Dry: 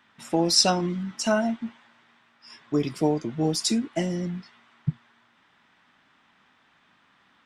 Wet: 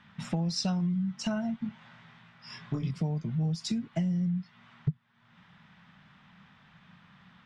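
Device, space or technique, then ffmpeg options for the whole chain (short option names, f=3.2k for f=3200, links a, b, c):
jukebox: -filter_complex "[0:a]lowpass=5.3k,lowshelf=f=230:t=q:w=3:g=9.5,acompressor=threshold=-33dB:ratio=4,asettb=1/sr,asplit=3[a][b][c];[a]atrim=end=1.624[d];[b]atrim=start=1.62:end=2.91,asetpts=PTS-STARTPTS,afade=t=in:d=0.004:c=qsin,afade=t=out:st=1.286:d=0.004:c=qsin,asplit=2[e][f];[f]adelay=24,volume=-3dB[g];[e][g]amix=inputs=2:normalize=0,atrim=end_sample=56889[h];[c]atrim=start=2.906[i];[d][h]acrossfade=d=0.004:c1=hsin:c2=qsin[j];[j][i]acrossfade=d=0.004:c1=qsin:c2=hsin,volume=2dB"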